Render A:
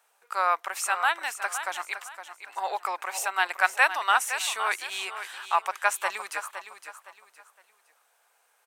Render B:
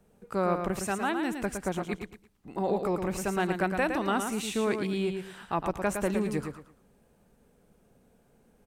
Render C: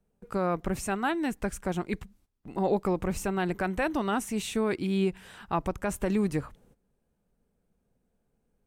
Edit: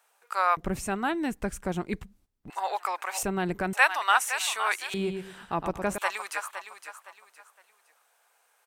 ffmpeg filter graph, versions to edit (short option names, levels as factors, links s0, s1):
-filter_complex "[2:a]asplit=2[s0][s1];[0:a]asplit=4[s2][s3][s4][s5];[s2]atrim=end=0.572[s6];[s0]atrim=start=0.568:end=2.502[s7];[s3]atrim=start=2.498:end=3.232[s8];[s1]atrim=start=3.228:end=3.732[s9];[s4]atrim=start=3.728:end=4.942[s10];[1:a]atrim=start=4.938:end=5.982[s11];[s5]atrim=start=5.978[s12];[s6][s7]acrossfade=d=0.004:c1=hsin:c2=hsin[s13];[s13][s8]acrossfade=d=0.004:c1=hsin:c2=hsin[s14];[s14][s9]acrossfade=d=0.004:c1=hsin:c2=hsin[s15];[s15][s10]acrossfade=d=0.004:c1=hsin:c2=hsin[s16];[s16][s11]acrossfade=d=0.004:c1=hsin:c2=hsin[s17];[s17][s12]acrossfade=d=0.004:c1=hsin:c2=hsin"